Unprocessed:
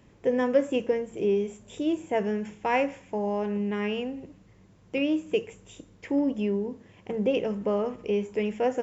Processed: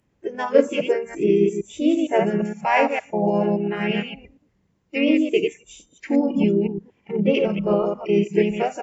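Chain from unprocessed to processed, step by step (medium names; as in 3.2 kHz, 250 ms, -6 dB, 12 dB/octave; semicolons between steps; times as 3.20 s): chunks repeated in reverse 115 ms, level -3.5 dB; spectral noise reduction 19 dB; harmony voices -3 st -6 dB; trim +6 dB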